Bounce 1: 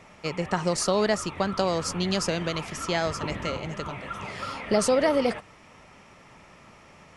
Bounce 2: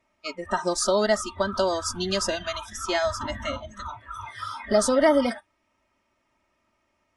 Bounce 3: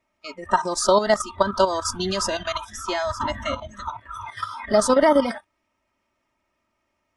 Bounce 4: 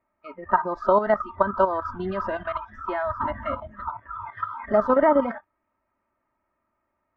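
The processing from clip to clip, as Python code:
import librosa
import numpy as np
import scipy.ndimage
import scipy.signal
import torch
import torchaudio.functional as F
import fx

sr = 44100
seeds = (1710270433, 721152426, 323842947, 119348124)

y1 = x + 0.74 * np.pad(x, (int(3.2 * sr / 1000.0), 0))[:len(x)]
y1 = fx.noise_reduce_blind(y1, sr, reduce_db=22)
y2 = fx.dynamic_eq(y1, sr, hz=1000.0, q=3.1, threshold_db=-43.0, ratio=4.0, max_db=7)
y2 = fx.level_steps(y2, sr, step_db=10)
y2 = F.gain(torch.from_numpy(y2), 5.5).numpy()
y3 = fx.ladder_lowpass(y2, sr, hz=1900.0, resonance_pct=30)
y3 = F.gain(torch.from_numpy(y3), 4.0).numpy()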